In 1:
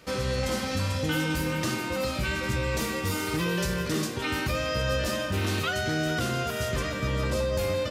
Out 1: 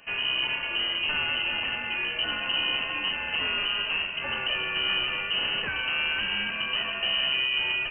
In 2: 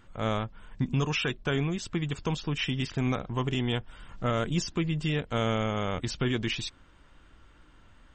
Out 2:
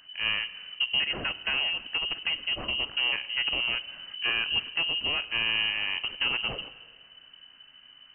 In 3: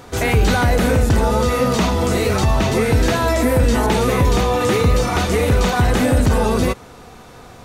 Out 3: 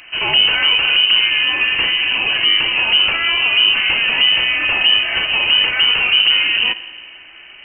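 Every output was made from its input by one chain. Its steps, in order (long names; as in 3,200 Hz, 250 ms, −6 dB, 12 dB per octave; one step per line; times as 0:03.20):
phase distortion by the signal itself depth 0.16 ms
spring reverb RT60 1.8 s, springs 45/54 ms, chirp 25 ms, DRR 15 dB
voice inversion scrambler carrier 3,000 Hz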